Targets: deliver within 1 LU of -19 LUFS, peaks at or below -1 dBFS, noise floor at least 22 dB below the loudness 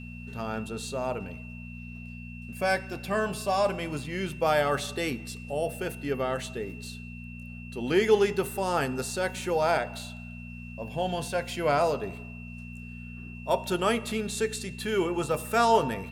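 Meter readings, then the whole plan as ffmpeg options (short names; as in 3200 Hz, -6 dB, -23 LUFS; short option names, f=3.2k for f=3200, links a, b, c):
hum 60 Hz; harmonics up to 240 Hz; hum level -40 dBFS; steady tone 2700 Hz; tone level -46 dBFS; loudness -28.5 LUFS; peak -9.5 dBFS; loudness target -19.0 LUFS
-> -af "bandreject=f=60:t=h:w=4,bandreject=f=120:t=h:w=4,bandreject=f=180:t=h:w=4,bandreject=f=240:t=h:w=4"
-af "bandreject=f=2.7k:w=30"
-af "volume=9.5dB,alimiter=limit=-1dB:level=0:latency=1"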